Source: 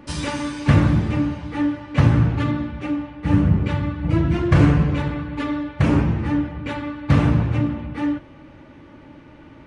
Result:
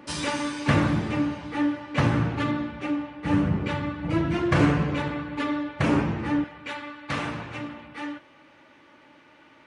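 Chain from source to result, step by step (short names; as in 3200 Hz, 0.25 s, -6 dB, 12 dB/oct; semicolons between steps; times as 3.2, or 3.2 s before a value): HPF 320 Hz 6 dB/oct, from 6.44 s 1300 Hz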